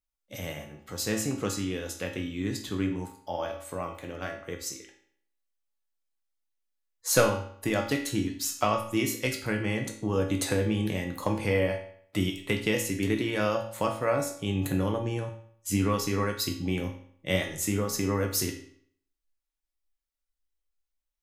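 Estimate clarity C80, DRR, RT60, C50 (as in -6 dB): 11.0 dB, 1.0 dB, 0.60 s, 7.5 dB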